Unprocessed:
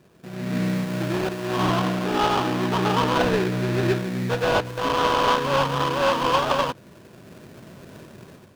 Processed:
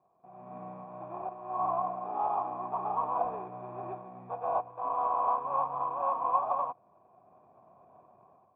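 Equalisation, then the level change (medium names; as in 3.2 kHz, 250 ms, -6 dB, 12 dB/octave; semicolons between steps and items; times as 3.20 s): cascade formant filter a; high-pass 41 Hz; band-stop 2.1 kHz, Q 20; +2.0 dB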